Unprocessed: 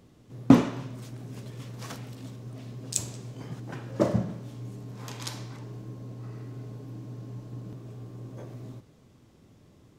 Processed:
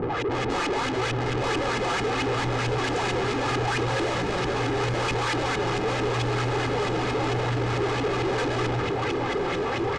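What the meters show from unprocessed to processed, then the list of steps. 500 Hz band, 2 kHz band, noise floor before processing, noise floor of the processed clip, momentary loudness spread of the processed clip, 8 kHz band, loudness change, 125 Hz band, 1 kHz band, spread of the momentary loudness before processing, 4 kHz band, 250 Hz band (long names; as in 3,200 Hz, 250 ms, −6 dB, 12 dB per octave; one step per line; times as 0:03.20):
+12.0 dB, +19.5 dB, −58 dBFS, −27 dBFS, 1 LU, +0.5 dB, +6.5 dB, +6.0 dB, +16.0 dB, 15 LU, +15.0 dB, 0.0 dB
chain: repeating echo 938 ms, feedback 52%, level −17 dB
flanger 0.79 Hz, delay 0.1 ms, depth 5.9 ms, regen +26%
auto-filter low-pass saw up 4.5 Hz 260–2,900 Hz
downward compressor 5 to 1, threshold −36 dBFS, peak gain reduction 20.5 dB
parametric band 310 Hz −3.5 dB 0.96 octaves
mid-hump overdrive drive 49 dB, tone 5,700 Hz, clips at −23.5 dBFS
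comb filter 2.4 ms, depth 65%
feedback delay with all-pass diffusion 1,189 ms, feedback 42%, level −8 dB
soft clipping −26.5 dBFS, distortion −15 dB
low-pass filter 8,300 Hz 24 dB per octave
level +5.5 dB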